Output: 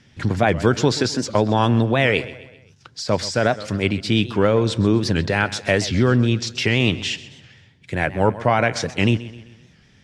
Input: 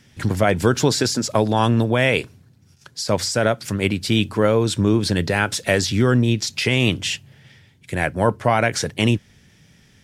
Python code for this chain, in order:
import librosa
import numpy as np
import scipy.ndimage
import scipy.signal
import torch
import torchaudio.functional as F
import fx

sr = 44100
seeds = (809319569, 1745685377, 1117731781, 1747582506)

y = scipy.signal.sosfilt(scipy.signal.butter(2, 5500.0, 'lowpass', fs=sr, output='sos'), x)
y = fx.echo_feedback(y, sr, ms=130, feedback_pct=47, wet_db=-16.5)
y = fx.record_warp(y, sr, rpm=78.0, depth_cents=160.0)